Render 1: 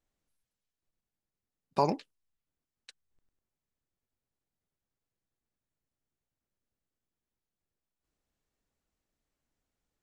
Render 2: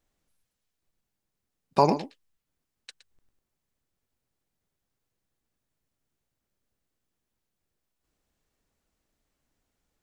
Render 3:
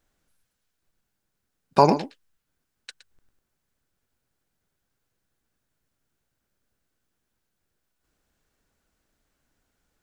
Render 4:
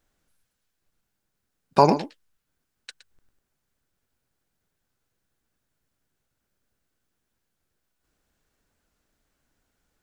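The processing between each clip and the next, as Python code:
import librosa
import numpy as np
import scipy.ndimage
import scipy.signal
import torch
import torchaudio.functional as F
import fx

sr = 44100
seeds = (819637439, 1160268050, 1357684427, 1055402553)

y1 = x + 10.0 ** (-13.5 / 20.0) * np.pad(x, (int(117 * sr / 1000.0), 0))[:len(x)]
y1 = F.gain(torch.from_numpy(y1), 6.5).numpy()
y2 = fx.peak_eq(y1, sr, hz=1500.0, db=6.5, octaves=0.28)
y2 = F.gain(torch.from_numpy(y2), 4.0).numpy()
y3 = fx.record_warp(y2, sr, rpm=45.0, depth_cents=100.0)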